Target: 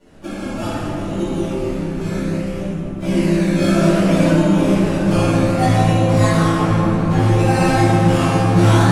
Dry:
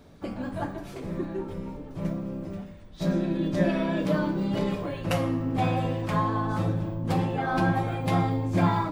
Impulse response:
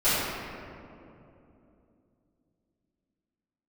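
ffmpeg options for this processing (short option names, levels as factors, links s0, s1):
-filter_complex "[0:a]acrusher=samples=18:mix=1:aa=0.000001:lfo=1:lforange=10.8:lforate=0.63,asettb=1/sr,asplit=3[s0][s1][s2];[s0]atrim=end=6.474[s3];[s1]atrim=start=6.47:end=7.21,asetpts=PTS-STARTPTS,afade=t=in:d=0.004:c=qsin,afade=t=out:st=0.736:d=0.004:c=qsin,highshelf=f=4300:g=-7.5[s4];[s2]atrim=start=7.206[s5];[s3][s4]acrossfade=d=0.004:c1=hsin:c2=qsin[s6];[s6][s5]acrossfade=d=0.004:c1=qsin:c2=hsin[s7];[1:a]atrim=start_sample=2205,asetrate=23814,aresample=44100[s8];[s7][s8]afir=irnorm=-1:irlink=0,volume=0.282"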